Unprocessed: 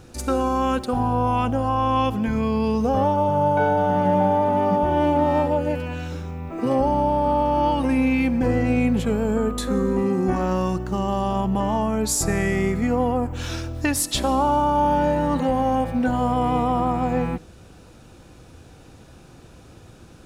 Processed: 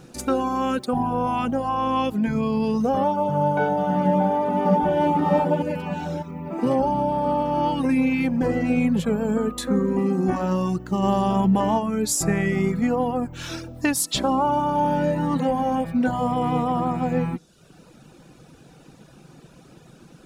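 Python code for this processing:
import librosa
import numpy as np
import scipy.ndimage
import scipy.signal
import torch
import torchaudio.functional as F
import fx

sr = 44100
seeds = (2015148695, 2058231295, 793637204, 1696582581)

y = fx.echo_throw(x, sr, start_s=4.05, length_s=0.97, ms=600, feedback_pct=50, wet_db=-5.0)
y = fx.env_flatten(y, sr, amount_pct=50, at=(11.02, 11.78), fade=0.02)
y = fx.dereverb_blind(y, sr, rt60_s=0.77)
y = fx.low_shelf_res(y, sr, hz=120.0, db=-7.0, q=3.0)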